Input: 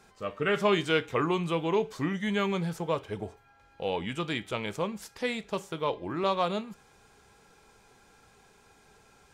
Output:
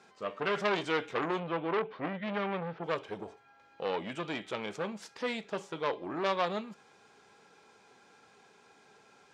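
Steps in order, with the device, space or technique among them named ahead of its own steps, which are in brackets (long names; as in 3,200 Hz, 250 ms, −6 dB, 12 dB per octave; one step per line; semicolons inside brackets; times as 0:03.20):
0:01.39–0:02.84: inverse Chebyshev low-pass filter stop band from 8,800 Hz, stop band 60 dB
public-address speaker with an overloaded transformer (saturating transformer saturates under 2,000 Hz; band-pass filter 200–6,100 Hz)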